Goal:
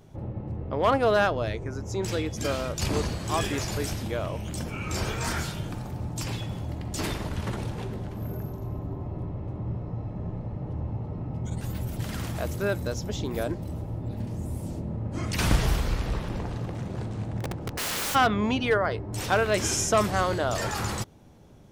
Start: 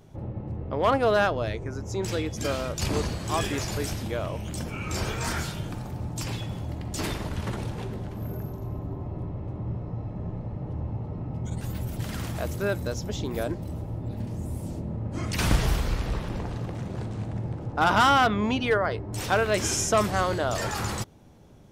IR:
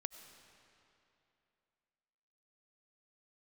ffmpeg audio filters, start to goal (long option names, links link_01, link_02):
-filter_complex "[0:a]asplit=3[link_01][link_02][link_03];[link_01]afade=type=out:start_time=17.4:duration=0.02[link_04];[link_02]aeval=exprs='(mod(18.8*val(0)+1,2)-1)/18.8':channel_layout=same,afade=type=in:start_time=17.4:duration=0.02,afade=type=out:start_time=18.14:duration=0.02[link_05];[link_03]afade=type=in:start_time=18.14:duration=0.02[link_06];[link_04][link_05][link_06]amix=inputs=3:normalize=0"